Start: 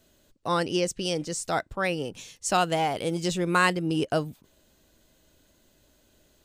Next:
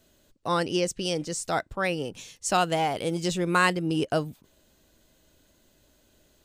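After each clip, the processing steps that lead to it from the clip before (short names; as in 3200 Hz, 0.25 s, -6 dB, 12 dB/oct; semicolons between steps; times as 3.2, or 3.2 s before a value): nothing audible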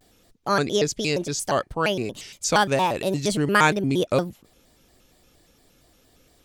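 shaped vibrato square 4.3 Hz, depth 250 cents; gain +4 dB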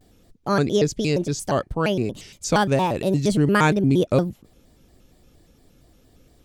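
low shelf 460 Hz +11 dB; gain -3.5 dB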